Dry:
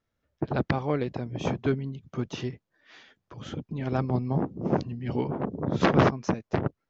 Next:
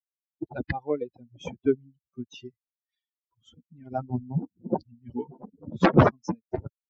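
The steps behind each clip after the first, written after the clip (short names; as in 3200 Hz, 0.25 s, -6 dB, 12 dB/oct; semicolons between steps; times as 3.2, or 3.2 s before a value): per-bin expansion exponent 3; high shelf 2700 Hz -9.5 dB; gain +8 dB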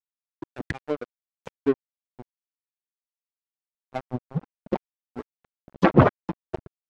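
crossover distortion -31 dBFS; treble ducked by the level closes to 2900 Hz, closed at -22 dBFS; gain +2.5 dB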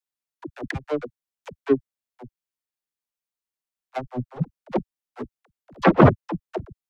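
dispersion lows, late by 61 ms, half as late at 310 Hz; gain +2.5 dB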